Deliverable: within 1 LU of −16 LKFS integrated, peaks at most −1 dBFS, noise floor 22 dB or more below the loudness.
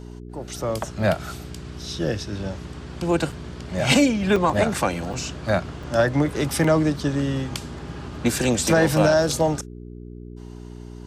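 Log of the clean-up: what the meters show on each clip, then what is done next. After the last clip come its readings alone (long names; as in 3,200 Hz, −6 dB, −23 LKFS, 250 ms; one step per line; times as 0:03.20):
number of dropouts 5; longest dropout 4.0 ms; mains hum 60 Hz; hum harmonics up to 420 Hz; level of the hum −35 dBFS; integrated loudness −22.5 LKFS; sample peak −6.0 dBFS; target loudness −16.0 LKFS
→ repair the gap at 0:03.32/0:04.36/0:05.13/0:05.83/0:06.64, 4 ms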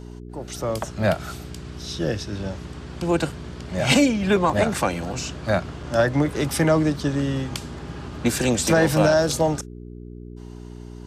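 number of dropouts 0; mains hum 60 Hz; hum harmonics up to 420 Hz; level of the hum −35 dBFS
→ hum removal 60 Hz, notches 7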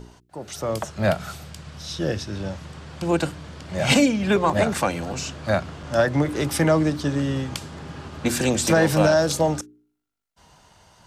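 mains hum none found; integrated loudness −22.5 LKFS; sample peak −6.5 dBFS; target loudness −16.0 LKFS
→ level +6.5 dB
brickwall limiter −1 dBFS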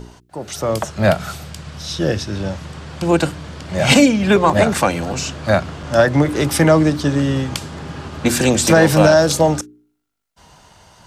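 integrated loudness −16.0 LKFS; sample peak −1.0 dBFS; background noise floor −59 dBFS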